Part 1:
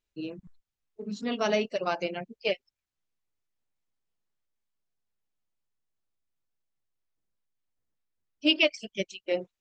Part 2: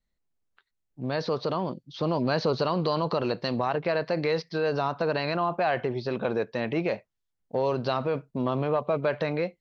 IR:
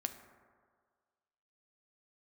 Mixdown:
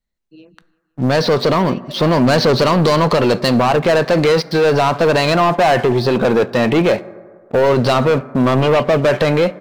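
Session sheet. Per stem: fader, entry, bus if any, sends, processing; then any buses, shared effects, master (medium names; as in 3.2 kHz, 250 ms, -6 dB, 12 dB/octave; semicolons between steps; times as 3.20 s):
-6.0 dB, 0.15 s, no send, echo send -19 dB, none
+3.0 dB, 0.00 s, send -4.5 dB, no echo send, waveshaping leveller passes 3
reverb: on, RT60 1.8 s, pre-delay 4 ms
echo: feedback delay 170 ms, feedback 47%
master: none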